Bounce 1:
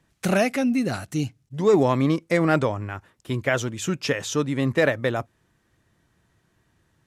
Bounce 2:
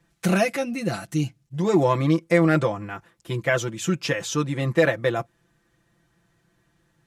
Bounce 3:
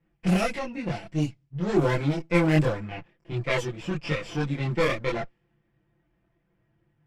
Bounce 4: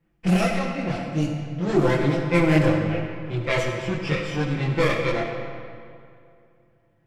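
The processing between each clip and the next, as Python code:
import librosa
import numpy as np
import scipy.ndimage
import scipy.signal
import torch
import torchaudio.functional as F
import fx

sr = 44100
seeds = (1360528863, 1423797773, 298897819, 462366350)

y1 = x + 0.82 * np.pad(x, (int(5.9 * sr / 1000.0), 0))[:len(x)]
y1 = y1 * 10.0 ** (-2.0 / 20.0)
y2 = fx.lower_of_two(y1, sr, delay_ms=0.38)
y2 = fx.chorus_voices(y2, sr, voices=4, hz=0.46, base_ms=24, depth_ms=4.6, mix_pct=55)
y2 = fx.env_lowpass(y2, sr, base_hz=1800.0, full_db=-18.0)
y3 = fx.rev_freeverb(y2, sr, rt60_s=2.4, hf_ratio=0.7, predelay_ms=15, drr_db=3.0)
y3 = y3 * 10.0 ** (2.0 / 20.0)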